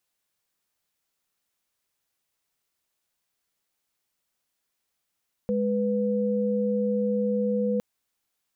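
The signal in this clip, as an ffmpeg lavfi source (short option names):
-f lavfi -i "aevalsrc='0.0562*(sin(2*PI*207.65*t)+sin(2*PI*493.88*t))':d=2.31:s=44100"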